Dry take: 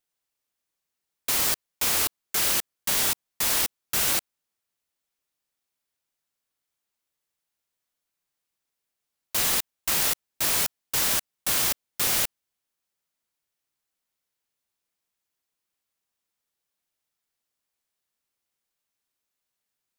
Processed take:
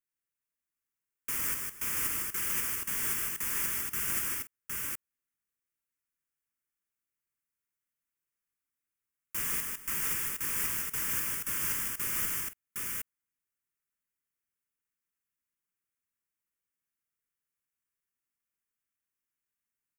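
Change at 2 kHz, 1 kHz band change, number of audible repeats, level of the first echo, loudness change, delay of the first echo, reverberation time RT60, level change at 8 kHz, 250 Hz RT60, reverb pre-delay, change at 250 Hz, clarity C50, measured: −5.5 dB, −9.0 dB, 3, −4.0 dB, −7.0 dB, 153 ms, no reverb audible, −7.5 dB, no reverb audible, no reverb audible, −6.5 dB, no reverb audible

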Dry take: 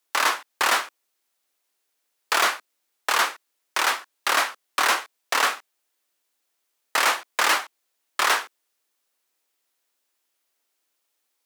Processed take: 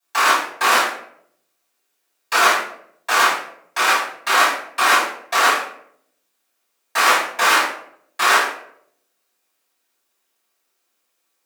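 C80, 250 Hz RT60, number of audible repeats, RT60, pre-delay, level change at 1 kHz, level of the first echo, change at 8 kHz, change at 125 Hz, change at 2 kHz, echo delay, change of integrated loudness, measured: 8.0 dB, 0.75 s, no echo audible, 0.70 s, 3 ms, +7.0 dB, no echo audible, +4.0 dB, can't be measured, +6.5 dB, no echo audible, +6.0 dB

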